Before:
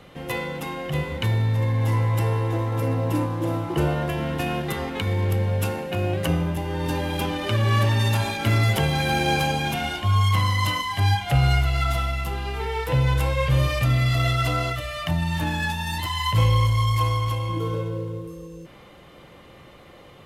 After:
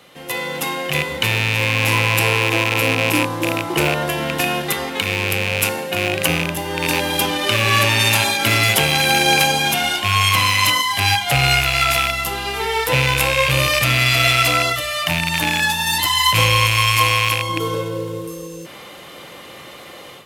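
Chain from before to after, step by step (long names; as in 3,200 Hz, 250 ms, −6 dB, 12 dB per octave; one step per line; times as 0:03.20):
loose part that buzzes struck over −23 dBFS, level −17 dBFS
high-pass filter 310 Hz 6 dB per octave
high-shelf EQ 3,200 Hz +10 dB
automatic gain control gain up to 10 dB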